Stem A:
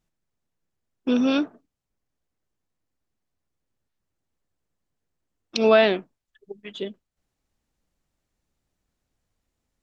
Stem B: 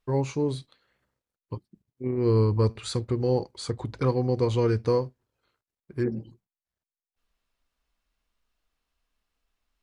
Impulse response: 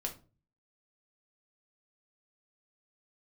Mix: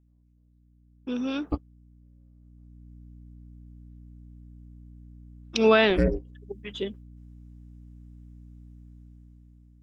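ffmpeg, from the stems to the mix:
-filter_complex "[0:a]aeval=exprs='val(0)+0.00501*(sin(2*PI*60*n/s)+sin(2*PI*2*60*n/s)/2+sin(2*PI*3*60*n/s)/3+sin(2*PI*4*60*n/s)/4+sin(2*PI*5*60*n/s)/5)':c=same,volume=-7.5dB,afade=t=in:st=2.37:d=0.58:silence=0.421697,asplit=2[a][b];[1:a]alimiter=limit=-20dB:level=0:latency=1:release=245,acontrast=63,aeval=exprs='val(0)*sin(2*PI*180*n/s)':c=same,volume=-4dB,asplit=3[c][d][e];[c]atrim=end=2.68,asetpts=PTS-STARTPTS,afade=t=out:st=2.676:d=0.004:c=hsin[f];[d]atrim=start=2.68:end=5.3,asetpts=PTS-STARTPTS,volume=0[g];[e]atrim=start=5.3,asetpts=PTS-STARTPTS,afade=t=in:d=0.004:c=hsin[h];[f][g][h]concat=n=3:v=0:a=1[i];[b]apad=whole_len=433391[j];[i][j]sidechaingate=range=-59dB:threshold=-51dB:ratio=16:detection=peak[k];[a][k]amix=inputs=2:normalize=0,equalizer=f=640:t=o:w=0.29:g=-7.5,bandreject=f=4.3k:w=8.4,dynaudnorm=f=410:g=5:m=8dB"

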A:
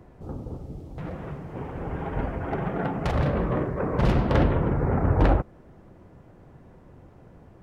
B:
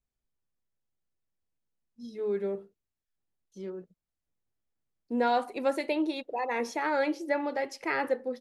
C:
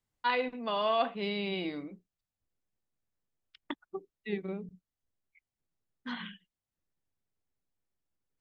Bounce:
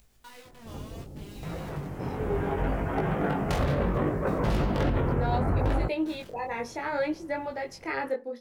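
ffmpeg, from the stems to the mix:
-filter_complex "[0:a]aemphasis=mode=production:type=50kf,dynaudnorm=f=310:g=7:m=7dB,adelay=450,volume=-2.5dB[a];[1:a]acompressor=mode=upward:threshold=-39dB:ratio=2.5,volume=1dB[b];[2:a]bass=f=250:g=7,treble=f=4k:g=7,acompressor=threshold=-33dB:ratio=16,acrusher=bits=5:mix=0:aa=0.000001,volume=-11dB[c];[a][b][c]amix=inputs=3:normalize=0,flanger=delay=18.5:depth=4.1:speed=0.68,alimiter=limit=-17.5dB:level=0:latency=1:release=64"

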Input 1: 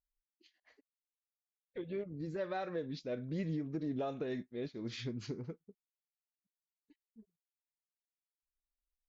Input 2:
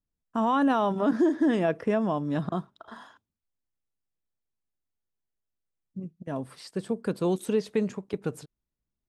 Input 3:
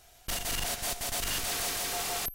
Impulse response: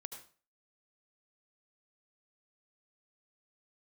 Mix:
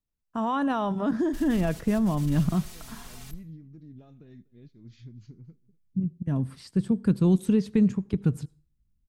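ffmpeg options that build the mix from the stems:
-filter_complex "[0:a]highshelf=f=2.1k:g=-11.5,crystalizer=i=4.5:c=0,volume=-17dB,asplit=3[a][b][c];[b]volume=-19dB[d];[c]volume=-23.5dB[e];[1:a]volume=-3dB,asplit=2[f][g];[g]volume=-15.5dB[h];[2:a]aecho=1:1:4.7:0.82,adelay=1050,volume=-19dB,asplit=2[i][j];[j]volume=-6dB[k];[3:a]atrim=start_sample=2205[l];[d][h][k]amix=inputs=3:normalize=0[m];[m][l]afir=irnorm=-1:irlink=0[n];[e]aecho=0:1:244:1[o];[a][f][i][n][o]amix=inputs=5:normalize=0,asubboost=boost=10.5:cutoff=170"

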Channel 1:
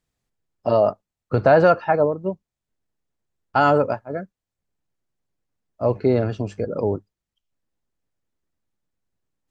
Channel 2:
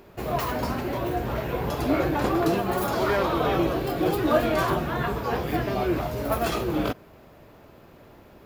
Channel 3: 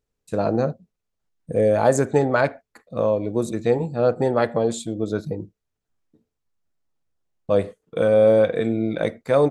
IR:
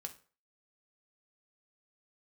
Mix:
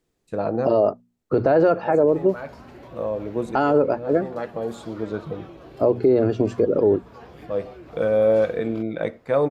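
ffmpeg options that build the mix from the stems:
-filter_complex "[0:a]equalizer=f=360:w=1.2:g=12.5,bandreject=f=60:t=h:w=6,bandreject=f=120:t=h:w=6,bandreject=f=180:t=h:w=6,bandreject=f=240:t=h:w=6,alimiter=limit=-5.5dB:level=0:latency=1:release=70,volume=2.5dB,asplit=2[a][b];[1:a]lowpass=9k,acompressor=threshold=-31dB:ratio=6,adelay=1900,volume=-9dB[c];[2:a]bass=f=250:g=-3,treble=f=4k:g=-12,volume=-4dB,asplit=2[d][e];[e]volume=-8.5dB[f];[b]apad=whole_len=419043[g];[d][g]sidechaincompress=threshold=-28dB:ratio=8:attack=16:release=747[h];[3:a]atrim=start_sample=2205[i];[f][i]afir=irnorm=-1:irlink=0[j];[a][c][h][j]amix=inputs=4:normalize=0,alimiter=limit=-9dB:level=0:latency=1:release=304"

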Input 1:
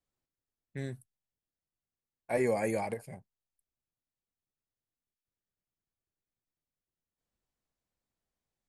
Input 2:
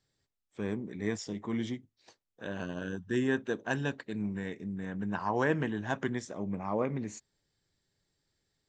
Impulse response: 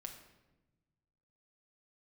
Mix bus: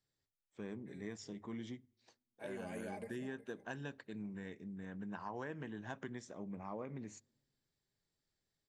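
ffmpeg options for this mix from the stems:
-filter_complex "[0:a]aecho=1:1:4.9:0.98,adelay=100,volume=-11.5dB,afade=t=in:st=2.4:d=0.75:silence=0.281838,asplit=2[a][b];[b]volume=-12.5dB[c];[1:a]bandreject=f=50:t=h:w=6,bandreject=f=100:t=h:w=6,volume=-9.5dB,asplit=2[d][e];[e]volume=-23.5dB[f];[2:a]atrim=start_sample=2205[g];[f][g]afir=irnorm=-1:irlink=0[h];[c]aecho=0:1:367:1[i];[a][d][h][i]amix=inputs=4:normalize=0,acompressor=threshold=-40dB:ratio=6"

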